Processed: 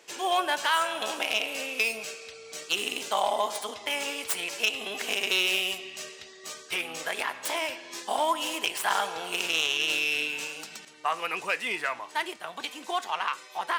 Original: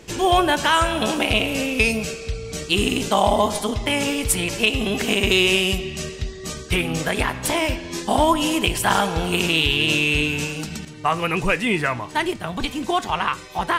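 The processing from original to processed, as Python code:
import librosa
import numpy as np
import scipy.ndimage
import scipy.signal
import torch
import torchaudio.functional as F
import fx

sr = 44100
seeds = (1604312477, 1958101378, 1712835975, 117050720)

y = fx.tracing_dist(x, sr, depth_ms=0.083)
y = scipy.signal.sosfilt(scipy.signal.butter(2, 600.0, 'highpass', fs=sr, output='sos'), y)
y = y * librosa.db_to_amplitude(-6.5)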